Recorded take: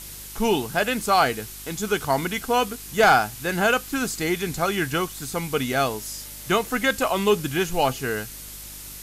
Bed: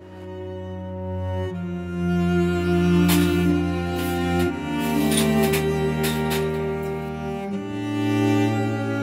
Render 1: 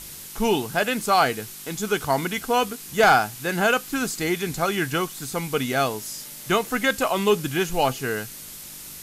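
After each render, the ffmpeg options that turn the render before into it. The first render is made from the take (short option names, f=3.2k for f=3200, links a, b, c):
-af "bandreject=f=50:t=h:w=4,bandreject=f=100:t=h:w=4"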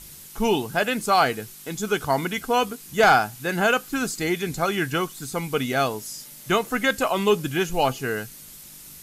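-af "afftdn=nr=6:nf=-40"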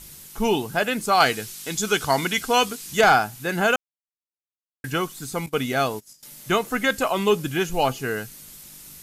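-filter_complex "[0:a]asettb=1/sr,asplit=3[a][b][c];[a]atrim=end=1.204[d];[b]atrim=start=1.2:end=3.01,asetpts=PTS-STARTPTS,afade=t=in:d=0.004:c=qsin,afade=t=out:st=1.806:d=0.004:c=qsin,equalizer=f=5.2k:w=0.38:g=8.5[e];[c]atrim=start=3.006[f];[d][e]acrossfade=d=0.004:c1=hsin:c2=qsin[g];[g][f]acrossfade=d=0.004:c1=qsin:c2=hsin,asettb=1/sr,asplit=3[h][i][j];[h]atrim=end=5.464[k];[i]atrim=start=5.46:end=6.23,asetpts=PTS-STARTPTS,afade=t=in:d=0.004:c=qsin,afade=t=out:st=0.766:d=0.004:c=qsin,agate=range=-21dB:threshold=-34dB:ratio=16:release=100:detection=peak[l];[j]atrim=start=6.226[m];[k][l]acrossfade=d=0.004:c1=hsin:c2=qsin[n];[n][m]acrossfade=d=0.004:c1=qsin:c2=hsin,asplit=3[o][p][q];[o]atrim=end=3.76,asetpts=PTS-STARTPTS,afade=t=out:st=3.756:d=0.004:c=hsin[r];[p]atrim=start=3.76:end=4.84,asetpts=PTS-STARTPTS,volume=0[s];[q]atrim=start=4.84,asetpts=PTS-STARTPTS,afade=t=in:d=0.004:c=hsin[t];[r][s][t]concat=n=3:v=0:a=1"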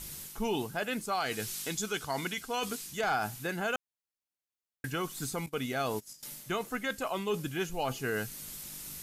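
-af "areverse,acompressor=threshold=-27dB:ratio=6,areverse,alimiter=limit=-22.5dB:level=0:latency=1:release=237"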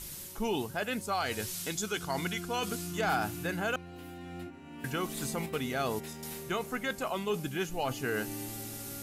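-filter_complex "[1:a]volume=-21.5dB[a];[0:a][a]amix=inputs=2:normalize=0"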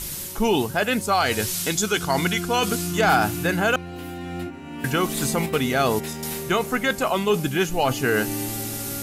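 -af "volume=11.5dB"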